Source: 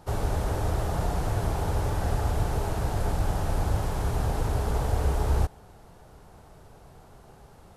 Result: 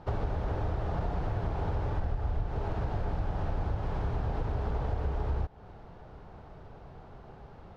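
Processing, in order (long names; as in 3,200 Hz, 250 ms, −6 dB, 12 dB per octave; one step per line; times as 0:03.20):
0:01.98–0:02.48: low-shelf EQ 61 Hz +9 dB
downward compressor, threshold −30 dBFS, peak gain reduction 14.5 dB
high-frequency loss of the air 250 metres
level +2.5 dB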